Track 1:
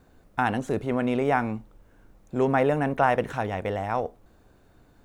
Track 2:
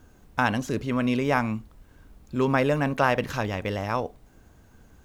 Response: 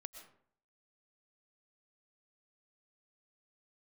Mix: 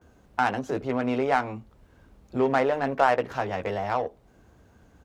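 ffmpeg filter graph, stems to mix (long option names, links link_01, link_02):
-filter_complex "[0:a]highpass=380,adynamicsmooth=sensitivity=2.5:basefreq=970,volume=1dB,asplit=2[link_01][link_02];[1:a]highpass=42,adelay=14,volume=-1.5dB[link_03];[link_02]apad=whole_len=223173[link_04];[link_03][link_04]sidechaincompress=threshold=-32dB:ratio=3:attack=45:release=413[link_05];[link_01][link_05]amix=inputs=2:normalize=0,highshelf=frequency=8400:gain=-10"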